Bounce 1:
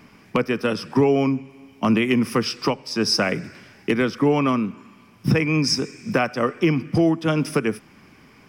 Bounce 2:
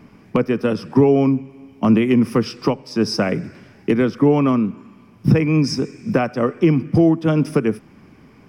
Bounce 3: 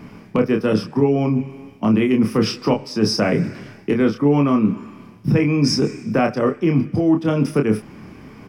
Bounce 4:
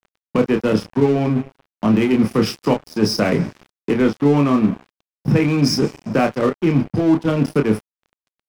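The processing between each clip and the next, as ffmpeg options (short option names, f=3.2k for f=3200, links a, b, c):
-af "tiltshelf=f=970:g=5.5"
-filter_complex "[0:a]areverse,acompressor=threshold=-21dB:ratio=6,areverse,asplit=2[a][b];[b]adelay=28,volume=-5dB[c];[a][c]amix=inputs=2:normalize=0,volume=6dB"
-af "aeval=exprs='sgn(val(0))*max(abs(val(0))-0.0299,0)':c=same,volume=2dB"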